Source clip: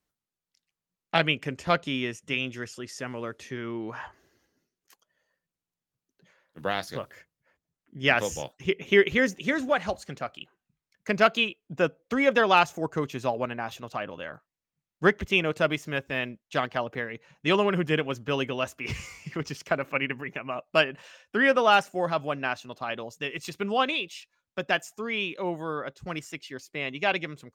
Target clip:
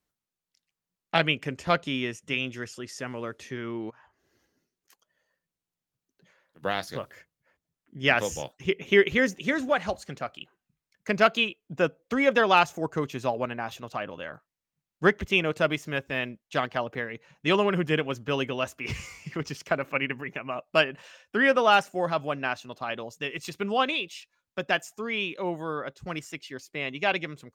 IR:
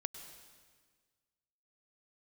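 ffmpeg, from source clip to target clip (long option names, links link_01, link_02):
-filter_complex "[0:a]asplit=3[link_01][link_02][link_03];[link_01]afade=type=out:start_time=3.89:duration=0.02[link_04];[link_02]acompressor=threshold=-55dB:ratio=8,afade=type=in:start_time=3.89:duration=0.02,afade=type=out:start_time=6.62:duration=0.02[link_05];[link_03]afade=type=in:start_time=6.62:duration=0.02[link_06];[link_04][link_05][link_06]amix=inputs=3:normalize=0"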